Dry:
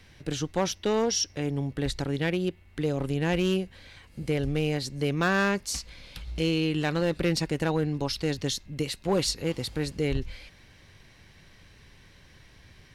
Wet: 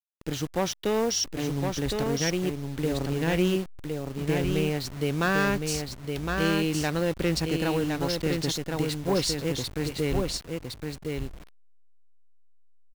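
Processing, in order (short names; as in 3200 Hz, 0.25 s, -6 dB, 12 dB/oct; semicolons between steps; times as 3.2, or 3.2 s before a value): level-crossing sampler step -36 dBFS; on a send: echo 1.062 s -4.5 dB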